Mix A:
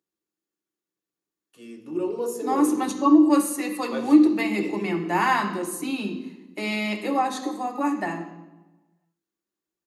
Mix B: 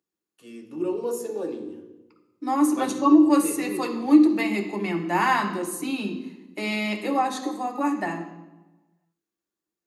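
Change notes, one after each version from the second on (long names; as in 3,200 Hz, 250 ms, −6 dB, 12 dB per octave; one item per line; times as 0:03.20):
first voice: entry −1.15 s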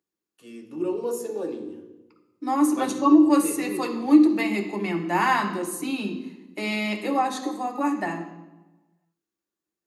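nothing changed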